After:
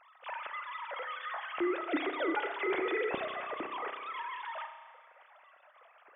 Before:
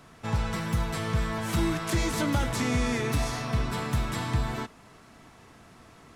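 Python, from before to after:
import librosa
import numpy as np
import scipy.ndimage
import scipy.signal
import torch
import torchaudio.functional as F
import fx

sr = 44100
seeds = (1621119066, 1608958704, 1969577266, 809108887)

y = fx.sine_speech(x, sr)
y = fx.rev_spring(y, sr, rt60_s=1.5, pass_ms=(32,), chirp_ms=25, drr_db=7.0)
y = y * librosa.db_to_amplitude(-9.0)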